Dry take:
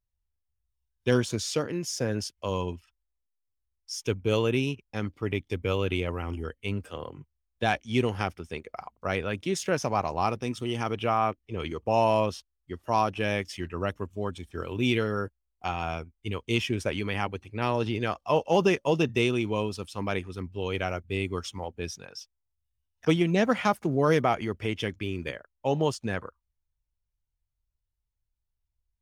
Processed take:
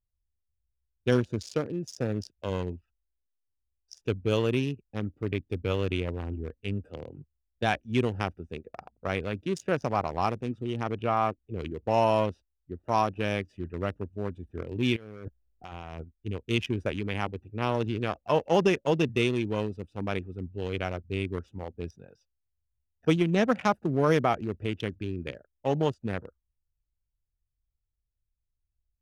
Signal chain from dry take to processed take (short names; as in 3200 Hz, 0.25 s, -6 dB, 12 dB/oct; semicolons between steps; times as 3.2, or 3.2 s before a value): Wiener smoothing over 41 samples; 10.39–11.17 high shelf 4400 Hz -6.5 dB; 14.96–16.01 negative-ratio compressor -42 dBFS, ratio -1